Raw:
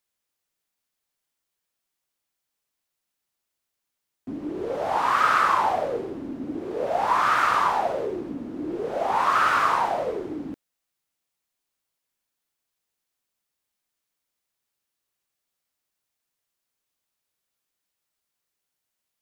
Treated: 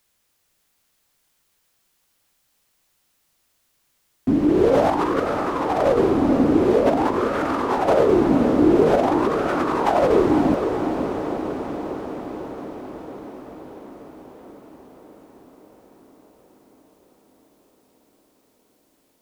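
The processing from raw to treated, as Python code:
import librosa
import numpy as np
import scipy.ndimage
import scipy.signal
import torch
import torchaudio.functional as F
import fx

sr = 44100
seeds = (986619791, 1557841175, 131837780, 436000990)

p1 = fx.low_shelf(x, sr, hz=160.0, db=6.0)
p2 = fx.over_compress(p1, sr, threshold_db=-28.0, ratio=-0.5)
p3 = p2 + fx.echo_diffused(p2, sr, ms=506, feedback_pct=71, wet_db=-7.0, dry=0)
y = p3 * 10.0 ** (9.0 / 20.0)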